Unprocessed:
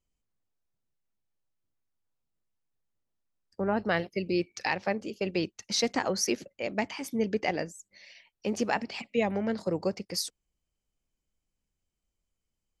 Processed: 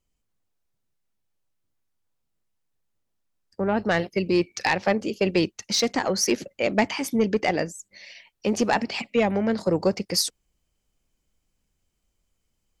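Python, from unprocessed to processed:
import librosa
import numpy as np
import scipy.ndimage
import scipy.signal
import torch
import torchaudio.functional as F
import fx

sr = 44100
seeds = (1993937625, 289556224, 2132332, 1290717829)

y = fx.fold_sine(x, sr, drive_db=4, ceiling_db=-12.5)
y = fx.rider(y, sr, range_db=10, speed_s=0.5)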